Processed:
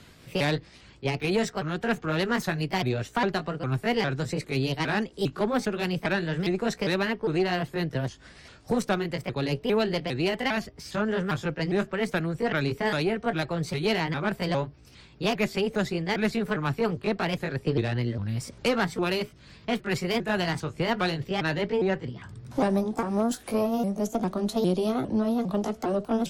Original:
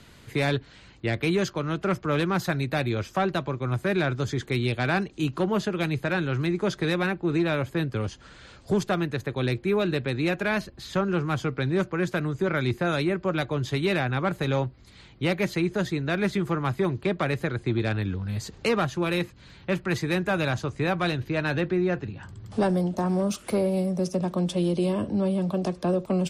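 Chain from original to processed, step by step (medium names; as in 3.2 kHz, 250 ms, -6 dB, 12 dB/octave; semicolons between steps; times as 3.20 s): sawtooth pitch modulation +4.5 st, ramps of 404 ms; Chebyshev shaper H 2 -13 dB, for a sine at -14.5 dBFS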